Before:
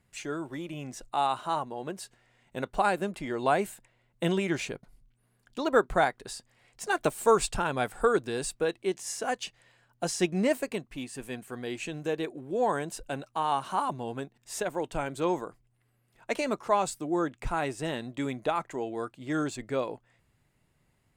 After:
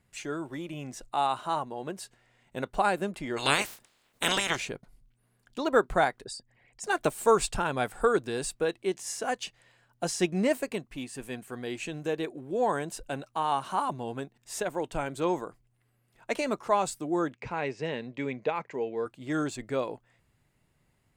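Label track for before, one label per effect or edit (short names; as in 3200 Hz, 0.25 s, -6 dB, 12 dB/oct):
3.360000	4.550000	spectral limiter ceiling under each frame's peak by 30 dB
6.240000	6.840000	formant sharpening exponent 2
17.340000	19.060000	speaker cabinet 120–5300 Hz, peaks and dips at 320 Hz -6 dB, 460 Hz +6 dB, 700 Hz -6 dB, 1300 Hz -7 dB, 2300 Hz +5 dB, 3500 Hz -7 dB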